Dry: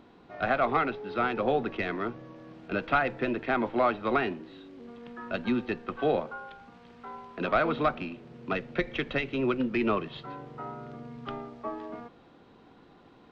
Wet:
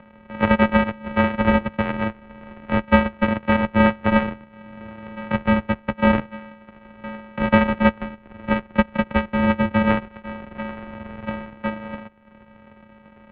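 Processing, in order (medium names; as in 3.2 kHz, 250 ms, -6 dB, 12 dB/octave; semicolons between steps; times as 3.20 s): sorted samples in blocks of 128 samples; transient shaper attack +4 dB, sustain -9 dB; mistuned SSB -130 Hz 160–2800 Hz; trim +8.5 dB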